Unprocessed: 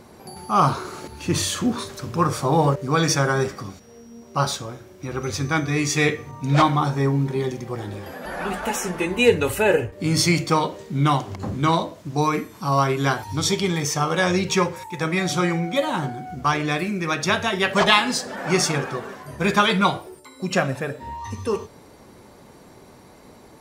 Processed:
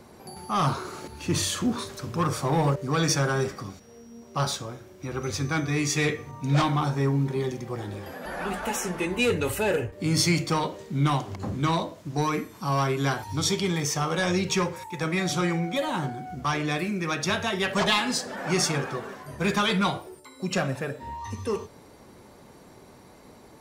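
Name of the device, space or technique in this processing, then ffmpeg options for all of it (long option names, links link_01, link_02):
one-band saturation: -filter_complex "[0:a]acrossover=split=240|3300[link_01][link_02][link_03];[link_02]asoftclip=type=tanh:threshold=-18dB[link_04];[link_01][link_04][link_03]amix=inputs=3:normalize=0,volume=-3dB"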